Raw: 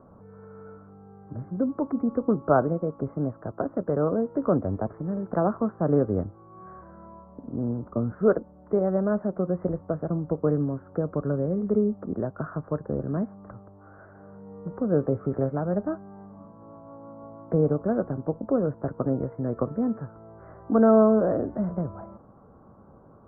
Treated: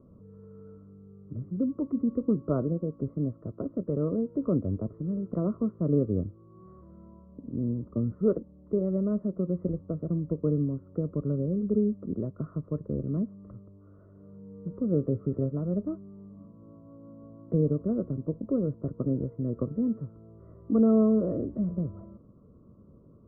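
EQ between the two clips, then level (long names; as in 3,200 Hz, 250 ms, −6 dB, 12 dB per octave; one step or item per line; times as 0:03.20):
moving average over 55 samples
0.0 dB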